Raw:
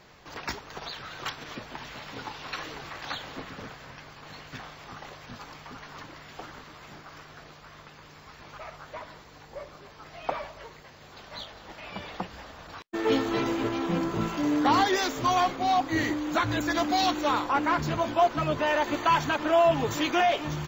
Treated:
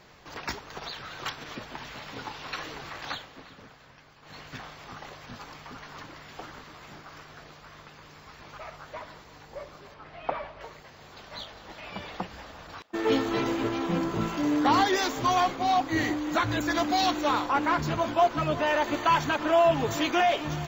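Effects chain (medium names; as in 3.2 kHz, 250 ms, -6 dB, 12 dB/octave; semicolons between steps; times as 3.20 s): 3.13–4.37 s: dip -9 dB, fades 0.15 s; 9.94–10.61 s: low-pass 3.1 kHz 12 dB/octave; thinning echo 351 ms, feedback 30%, high-pass 390 Hz, level -18.5 dB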